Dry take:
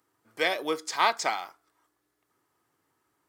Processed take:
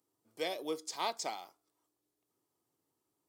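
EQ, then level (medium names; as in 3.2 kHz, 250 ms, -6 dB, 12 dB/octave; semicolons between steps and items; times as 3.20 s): high-pass 120 Hz 6 dB/octave; peaking EQ 1.6 kHz -15 dB 1.4 oct; -5.0 dB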